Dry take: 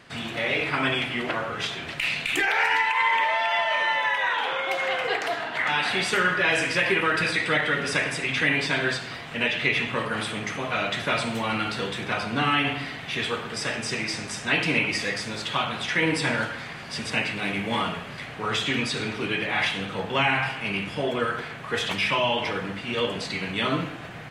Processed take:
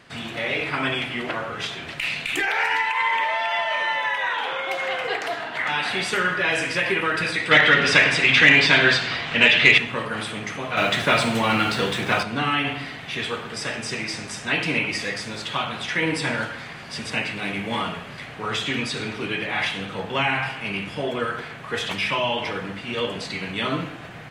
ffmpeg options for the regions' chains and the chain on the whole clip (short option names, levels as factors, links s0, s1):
-filter_complex "[0:a]asettb=1/sr,asplit=3[s0][s1][s2];[s0]atrim=end=7.514[s3];[s1]atrim=start=7.51:end=9.78,asetpts=PTS-STARTPTS,afade=t=in:d=0.004:c=qsin,afade=t=out:st=2.266:d=0.004:c=qsin,lowpass=3800,highshelf=f=2200:g=11,acontrast=43[s4];[s2]atrim=start=9.776[s5];[s3][s4]acrossfade=d=0.004:c1=hsin:c2=qsin[s6];[s6][s5]acrossfade=d=0.004:c1=qsin:c2=hsin,asettb=1/sr,asplit=3[s7][s8][s9];[s7]atrim=end=10.774[s10];[s8]atrim=start=10.77:end=12.23,asetpts=PTS-STARTPTS,afade=t=in:d=0.004:c=qsin,afade=t=out:st=1.456:d=0.004:c=qsin,highpass=53,acontrast=77,aeval=exprs='sgn(val(0))*max(abs(val(0))-0.00841,0)':c=same[s11];[s9]atrim=start=12.226[s12];[s10][s11]acrossfade=d=0.004:c1=hsin:c2=qsin[s13];[s13][s12]acrossfade=d=0.004:c1=qsin:c2=hsin"